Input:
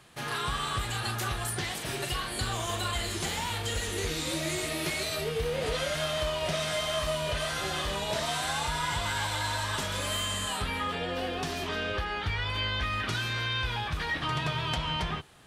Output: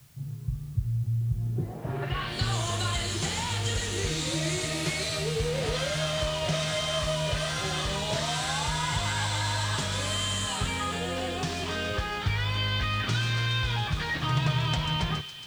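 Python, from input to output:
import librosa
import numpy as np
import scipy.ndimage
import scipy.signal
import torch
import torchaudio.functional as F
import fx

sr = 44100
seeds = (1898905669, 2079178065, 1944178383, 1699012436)

y = fx.peak_eq(x, sr, hz=130.0, db=9.0, octaves=1.0)
y = fx.echo_wet_highpass(y, sr, ms=139, feedback_pct=81, hz=3400.0, wet_db=-7.5)
y = fx.filter_sweep_lowpass(y, sr, from_hz=120.0, to_hz=7500.0, start_s=1.27, end_s=2.54, q=1.2)
y = y + 10.0 ** (-22.5 / 20.0) * np.pad(y, (int(106 * sr / 1000.0), 0))[:len(y)]
y = fx.quant_dither(y, sr, seeds[0], bits=10, dither='triangular')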